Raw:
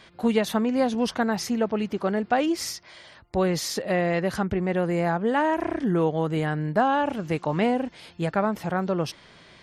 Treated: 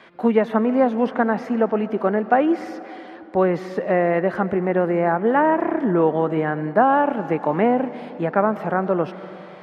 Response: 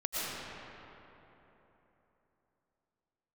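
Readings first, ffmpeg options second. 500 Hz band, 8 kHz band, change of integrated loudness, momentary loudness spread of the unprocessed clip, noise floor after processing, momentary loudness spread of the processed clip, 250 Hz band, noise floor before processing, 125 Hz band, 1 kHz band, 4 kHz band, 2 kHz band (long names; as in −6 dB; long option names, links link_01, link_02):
+6.0 dB, below −20 dB, +5.0 dB, 5 LU, −40 dBFS, 8 LU, +4.0 dB, −52 dBFS, 0.0 dB, +6.0 dB, below −10 dB, +3.5 dB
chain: -filter_complex "[0:a]acrossover=split=180 2600:gain=0.0891 1 0.158[link_01][link_02][link_03];[link_01][link_02][link_03]amix=inputs=3:normalize=0,acrossover=split=2500[link_04][link_05];[link_05]acompressor=threshold=-58dB:ratio=4:attack=1:release=60[link_06];[link_04][link_06]amix=inputs=2:normalize=0,asplit=2[link_07][link_08];[1:a]atrim=start_sample=2205[link_09];[link_08][link_09]afir=irnorm=-1:irlink=0,volume=-20.5dB[link_10];[link_07][link_10]amix=inputs=2:normalize=0,volume=5.5dB"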